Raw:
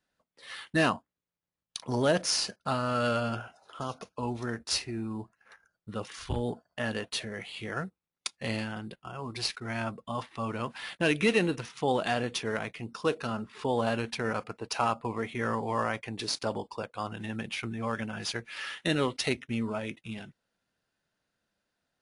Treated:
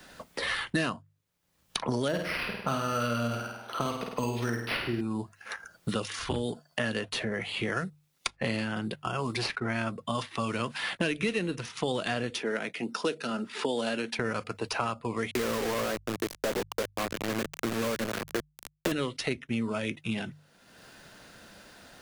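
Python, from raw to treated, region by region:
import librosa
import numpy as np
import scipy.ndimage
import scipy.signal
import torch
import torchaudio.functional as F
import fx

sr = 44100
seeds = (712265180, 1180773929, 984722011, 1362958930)

y = fx.chain(x, sr, fx.high_shelf(hz=3600.0, db=-6.5),
    fx.room_flutter(wall_m=8.7, rt60_s=0.62),
    fx.resample_linear(factor=6), at=(2.08, 5.01))
y = fx.chain(y, sr, fx.highpass(hz=210.0, slope=24),
    fx.notch(hz=1100.0, q=6.1), at=(12.3, 14.19))
y = fx.chain(y, sr, fx.bandpass_q(hz=470.0, q=0.88),
    fx.quant_companded(bits=2), at=(15.31, 18.92))
y = fx.hum_notches(y, sr, base_hz=50, count=3)
y = fx.dynamic_eq(y, sr, hz=820.0, q=2.8, threshold_db=-47.0, ratio=4.0, max_db=-7)
y = fx.band_squash(y, sr, depth_pct=100)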